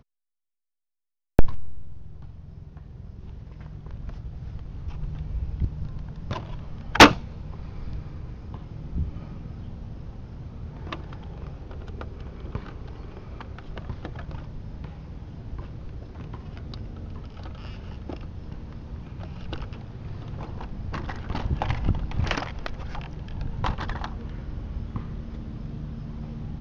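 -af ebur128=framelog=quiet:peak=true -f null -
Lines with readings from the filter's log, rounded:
Integrated loudness:
  I:         -30.0 LUFS
  Threshold: -40.6 LUFS
Loudness range:
  LRA:        16.7 LU
  Threshold: -50.4 LUFS
  LRA low:   -39.3 LUFS
  LRA high:  -22.6 LUFS
True peak:
  Peak:       -3.6 dBFS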